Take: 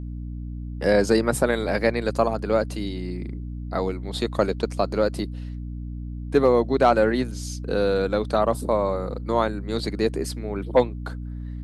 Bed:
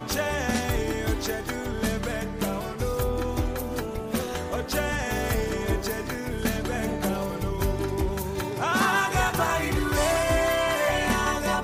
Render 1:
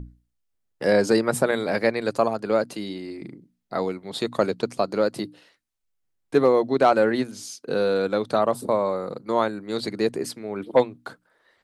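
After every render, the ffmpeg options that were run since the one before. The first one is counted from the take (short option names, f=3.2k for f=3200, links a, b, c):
-af "bandreject=f=60:t=h:w=6,bandreject=f=120:t=h:w=6,bandreject=f=180:t=h:w=6,bandreject=f=240:t=h:w=6,bandreject=f=300:t=h:w=6"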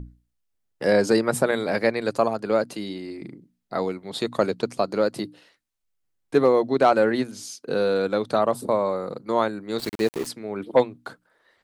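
-filter_complex "[0:a]asplit=3[a][b][c];[a]afade=t=out:st=9.78:d=0.02[d];[b]aeval=exprs='val(0)*gte(abs(val(0)),0.0282)':c=same,afade=t=in:st=9.78:d=0.02,afade=t=out:st=10.26:d=0.02[e];[c]afade=t=in:st=10.26:d=0.02[f];[d][e][f]amix=inputs=3:normalize=0"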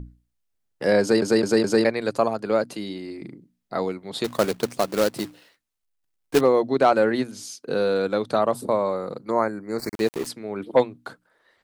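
-filter_complex "[0:a]asettb=1/sr,asplit=3[a][b][c];[a]atrim=end=4.244[d];[b]atrim=start=4.24:end=6.41,asetpts=PTS-STARTPTS,afade=t=in:d=0.004:c=qsin,afade=t=out:st=2.166:d=0.004:c=qsin,acrusher=bits=2:mode=log:mix=0:aa=0.000001[e];[c]atrim=start=6.406[f];[d][e]acrossfade=d=0.004:c1=hsin:c2=qsin[g];[g][f]acrossfade=d=0.004:c1=qsin:c2=hsin,asettb=1/sr,asplit=3[h][i][j];[h]atrim=end=9.304[k];[i]atrim=start=9.3:end=9.95,asetpts=PTS-STARTPTS,afade=t=in:d=0.004:c=qsin,afade=t=out:st=0.646:d=0.004:c=qsin,asuperstop=centerf=3200:order=8:qfactor=1.5[l];[j]atrim=start=9.946[m];[k][l]acrossfade=d=0.004:c1=hsin:c2=qsin[n];[n][m]acrossfade=d=0.004:c1=qsin:c2=hsin,asplit=5[o][p][q][r][s];[o]atrim=end=1.222[t];[p]atrim=start=1.008:end=1.222[u];[q]atrim=start=1.008:end=1.222[v];[r]atrim=start=1.008:end=1.222[w];[s]atrim=start=1.848[x];[t][u]acrossfade=d=0.004:c1=hsin:c2=hsin[y];[y][v]acrossfade=d=0.004:c1=hsin:c2=hsin[z];[z][w]acrossfade=d=0.004:c1=hsin:c2=hsin[aa];[aa][x]acrossfade=d=0.004:c1=hsin:c2=hsin"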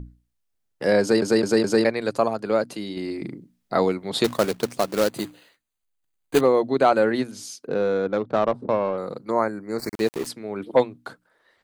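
-filter_complex "[0:a]asettb=1/sr,asplit=3[a][b][c];[a]atrim=end=5.104[d];[b]atrim=start=5.1:end=7.14,asetpts=PTS-STARTPTS,afade=t=in:d=0.004:c=qsin,afade=t=out:st=2.036:d=0.004:c=qsin,asuperstop=centerf=5400:order=8:qfactor=6.4[e];[c]atrim=start=7.136[f];[d][e]acrossfade=d=0.004:c1=hsin:c2=qsin[g];[g][f]acrossfade=d=0.004:c1=qsin:c2=hsin,asettb=1/sr,asplit=3[h][i][j];[h]atrim=end=7.674[k];[i]atrim=start=7.67:end=8.98,asetpts=PTS-STARTPTS,afade=t=in:d=0.004:c=qsin,afade=t=out:st=1.306:d=0.004:c=qsin,adynamicsmooth=sensitivity=1:basefreq=930[l];[j]atrim=start=8.976[m];[k][l]acrossfade=d=0.004:c1=hsin:c2=qsin[n];[n][m]acrossfade=d=0.004:c1=qsin:c2=hsin,asplit=3[o][p][q];[o]atrim=end=2.972[r];[p]atrim=start=2.968:end=4.342,asetpts=PTS-STARTPTS,volume=5.5dB[s];[q]atrim=start=4.338[t];[r][s]acrossfade=d=0.004:c1=hsin:c2=hsin[u];[u][t]acrossfade=d=0.004:c1=hsin:c2=hsin"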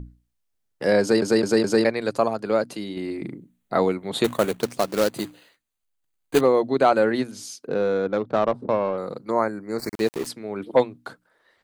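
-filter_complex "[0:a]asettb=1/sr,asplit=3[a][b][c];[a]atrim=end=2.844[d];[b]atrim=start=2.84:end=4.61,asetpts=PTS-STARTPTS,afade=t=in:d=0.004:c=qsin,afade=t=out:st=1.766:d=0.004:c=qsin,equalizer=f=5.1k:t=o:w=0.38:g=-11.5[e];[c]atrim=start=4.606[f];[d][e]acrossfade=d=0.004:c1=hsin:c2=qsin[g];[g][f]acrossfade=d=0.004:c1=qsin:c2=hsin"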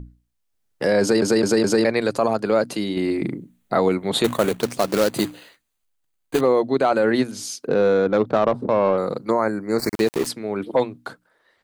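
-af "dynaudnorm=f=110:g=11:m=11.5dB,alimiter=limit=-9dB:level=0:latency=1:release=27"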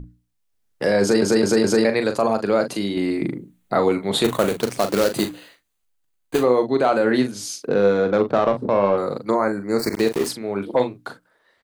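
-filter_complex "[0:a]asplit=2[a][b];[b]adelay=40,volume=-8.5dB[c];[a][c]amix=inputs=2:normalize=0"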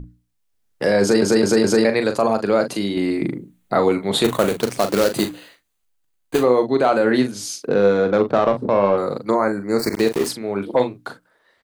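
-af "volume=1.5dB"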